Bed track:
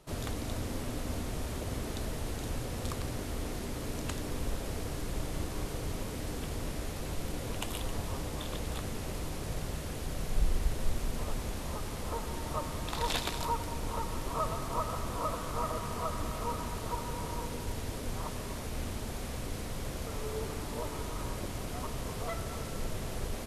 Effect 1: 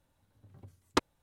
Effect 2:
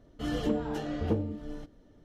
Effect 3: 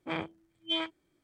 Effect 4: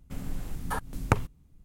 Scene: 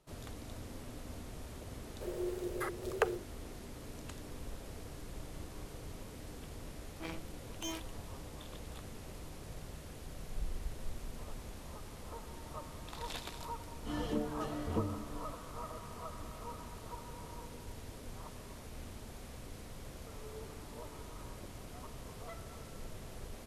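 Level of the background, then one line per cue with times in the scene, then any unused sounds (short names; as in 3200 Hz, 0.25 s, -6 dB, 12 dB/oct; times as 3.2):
bed track -10.5 dB
1.9 add 4 -7.5 dB + frequency shift +340 Hz
6.93 add 3 -8 dB + minimum comb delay 6 ms
13.66 add 2 -6.5 dB
not used: 1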